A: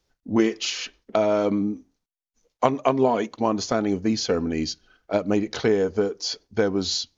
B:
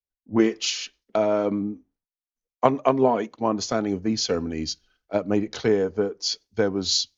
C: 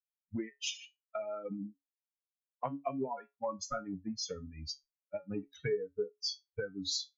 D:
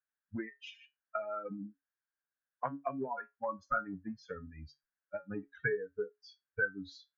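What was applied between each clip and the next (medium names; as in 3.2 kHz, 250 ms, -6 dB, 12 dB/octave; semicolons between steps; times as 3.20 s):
three bands expanded up and down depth 70%; trim -1 dB
expander on every frequency bin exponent 3; compression 5:1, threshold -34 dBFS, peak gain reduction 16.5 dB; feedback comb 140 Hz, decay 0.18 s, harmonics all, mix 80%; trim +7.5 dB
resonant low-pass 1.6 kHz, resonance Q 8.2; trim -2.5 dB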